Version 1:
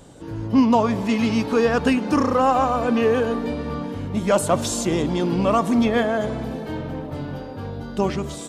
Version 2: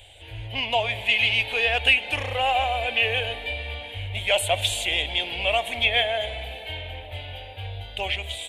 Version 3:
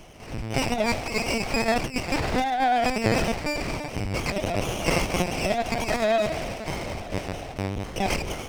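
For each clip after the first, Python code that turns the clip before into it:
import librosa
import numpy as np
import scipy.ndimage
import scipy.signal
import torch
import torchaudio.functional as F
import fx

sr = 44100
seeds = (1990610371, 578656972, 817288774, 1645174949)

y1 = fx.curve_eq(x, sr, hz=(100.0, 150.0, 260.0, 730.0, 1200.0, 2300.0, 3300.0, 5400.0, 9300.0), db=(0, -28, -27, 0, -19, 13, 14, -14, 1))
y2 = fx.over_compress(y1, sr, threshold_db=-24.0, ratio=-0.5)
y2 = fx.lpc_vocoder(y2, sr, seeds[0], excitation='pitch_kept', order=8)
y2 = fx.running_max(y2, sr, window=9)
y2 = F.gain(torch.from_numpy(y2), 2.5).numpy()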